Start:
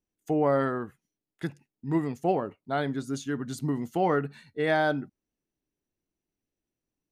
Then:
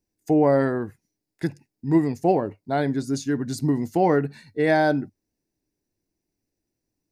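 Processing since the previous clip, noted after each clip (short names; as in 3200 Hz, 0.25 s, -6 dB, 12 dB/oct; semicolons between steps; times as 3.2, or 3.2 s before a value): thirty-one-band EQ 100 Hz +6 dB, 315 Hz +3 dB, 1250 Hz -11 dB, 3150 Hz -11 dB, 5000 Hz +6 dB; gain +5.5 dB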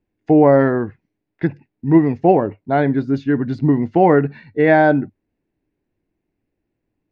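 LPF 2900 Hz 24 dB/oct; gain +7 dB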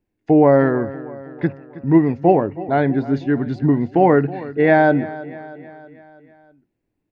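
feedback echo 0.32 s, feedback 55%, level -17 dB; gain -1 dB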